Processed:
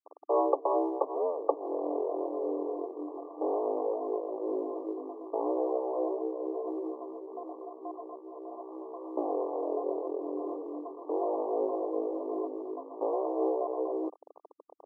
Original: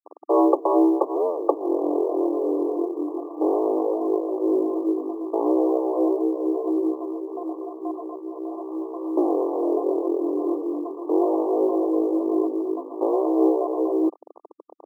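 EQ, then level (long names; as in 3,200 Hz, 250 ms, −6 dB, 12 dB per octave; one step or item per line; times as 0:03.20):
low-pass filter 1,100 Hz 6 dB per octave
parametric band 340 Hz −14 dB 0.33 octaves
−4.0 dB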